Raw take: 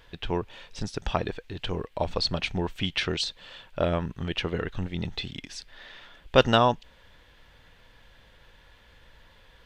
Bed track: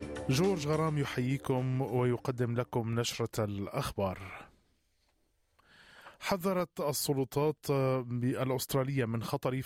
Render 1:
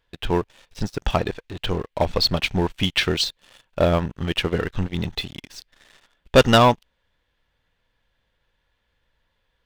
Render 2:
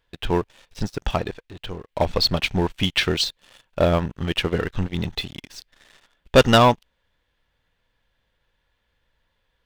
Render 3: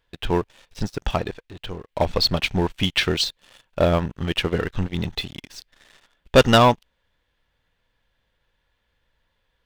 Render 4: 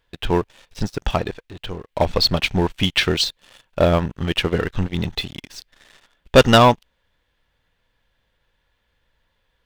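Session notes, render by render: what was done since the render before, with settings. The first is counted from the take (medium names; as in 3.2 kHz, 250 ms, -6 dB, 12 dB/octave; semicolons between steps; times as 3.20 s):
waveshaping leveller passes 3; upward expansion 1.5:1, over -28 dBFS
0.82–1.88 s: fade out, to -11.5 dB
no audible change
trim +2.5 dB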